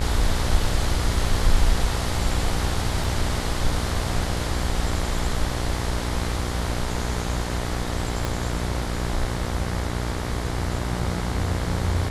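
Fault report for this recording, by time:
buzz 60 Hz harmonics 38 -28 dBFS
3.04 s: dropout 3 ms
8.25 s: pop

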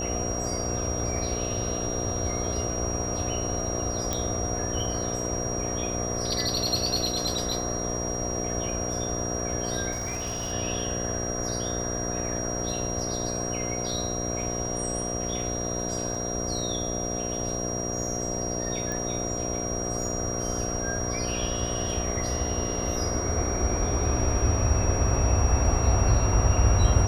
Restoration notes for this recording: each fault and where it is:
buzz 60 Hz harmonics 12 -32 dBFS
whine 5.7 kHz -32 dBFS
4.13 s: pop -12 dBFS
9.91–10.53 s: clipped -26.5 dBFS
16.15 s: dropout 3 ms
18.92 s: pop

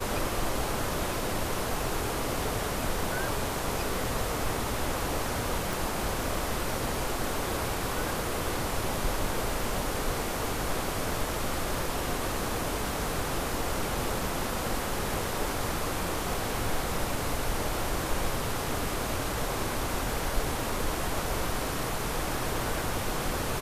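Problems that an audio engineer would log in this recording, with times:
5.73 s: pop

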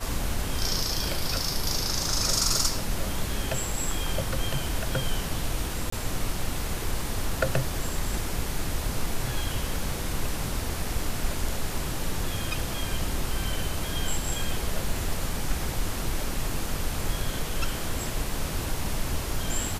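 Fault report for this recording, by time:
5.90–5.92 s: dropout 24 ms

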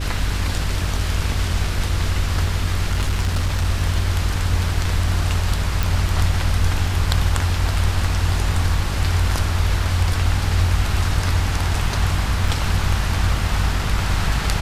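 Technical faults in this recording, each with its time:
buzz 50 Hz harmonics 9 -24 dBFS
2.92–3.66 s: clipped -15 dBFS
5.83 s: pop
12.48 s: dropout 3.4 ms

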